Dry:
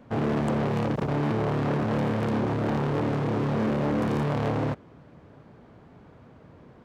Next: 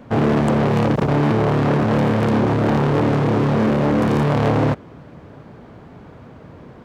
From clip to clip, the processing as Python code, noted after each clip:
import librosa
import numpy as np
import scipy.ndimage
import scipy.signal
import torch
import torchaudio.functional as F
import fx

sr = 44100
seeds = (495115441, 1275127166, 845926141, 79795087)

y = fx.rider(x, sr, range_db=10, speed_s=0.5)
y = y * 10.0 ** (9.0 / 20.0)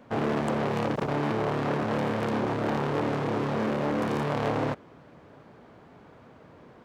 y = fx.low_shelf(x, sr, hz=220.0, db=-10.0)
y = y * 10.0 ** (-7.0 / 20.0)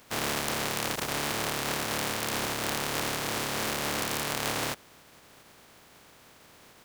y = fx.spec_flatten(x, sr, power=0.31)
y = y * 10.0 ** (-3.5 / 20.0)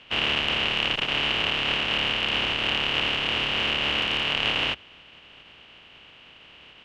y = fx.octave_divider(x, sr, octaves=2, level_db=-5.0)
y = fx.lowpass_res(y, sr, hz=2900.0, q=8.4)